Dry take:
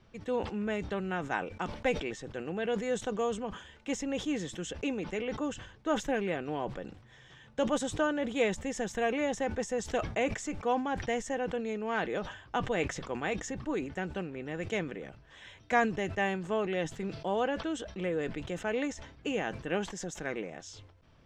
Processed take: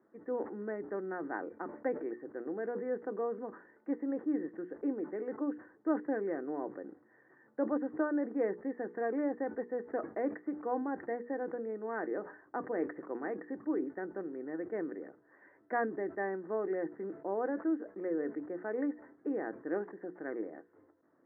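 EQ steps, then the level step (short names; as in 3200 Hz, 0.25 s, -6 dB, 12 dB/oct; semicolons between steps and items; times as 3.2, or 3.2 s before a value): resonant high-pass 310 Hz, resonance Q 3.6; Chebyshev low-pass 1900 Hz, order 6; notches 60/120/180/240/300/360/420/480 Hz; -7.0 dB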